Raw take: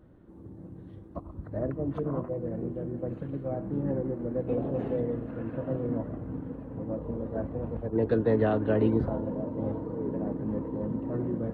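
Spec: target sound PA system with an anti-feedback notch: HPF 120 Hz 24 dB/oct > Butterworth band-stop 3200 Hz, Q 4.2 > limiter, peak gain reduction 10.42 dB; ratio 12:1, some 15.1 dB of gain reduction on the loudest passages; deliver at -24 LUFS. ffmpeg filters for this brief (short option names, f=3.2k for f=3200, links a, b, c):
-af "acompressor=threshold=-35dB:ratio=12,highpass=f=120:w=0.5412,highpass=f=120:w=1.3066,asuperstop=centerf=3200:order=8:qfactor=4.2,volume=22dB,alimiter=limit=-16dB:level=0:latency=1"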